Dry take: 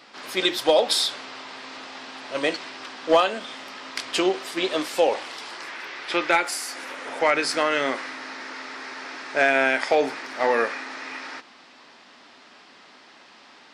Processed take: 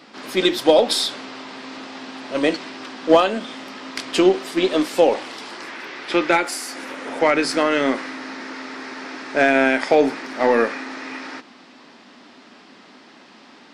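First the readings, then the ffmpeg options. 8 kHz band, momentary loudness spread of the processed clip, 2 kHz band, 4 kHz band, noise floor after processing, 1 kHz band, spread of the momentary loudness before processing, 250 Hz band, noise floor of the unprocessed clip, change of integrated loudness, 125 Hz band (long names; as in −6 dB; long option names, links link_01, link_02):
+1.0 dB, 18 LU, +1.5 dB, +1.0 dB, −47 dBFS, +2.5 dB, 16 LU, +9.5 dB, −51 dBFS, +4.5 dB, +9.0 dB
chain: -af "equalizer=frequency=230:width_type=o:width=1.8:gain=10.5,aeval=exprs='0.75*(cos(1*acos(clip(val(0)/0.75,-1,1)))-cos(1*PI/2))+0.0422*(cos(2*acos(clip(val(0)/0.75,-1,1)))-cos(2*PI/2))+0.00944*(cos(8*acos(clip(val(0)/0.75,-1,1)))-cos(8*PI/2))':channel_layout=same,volume=1dB"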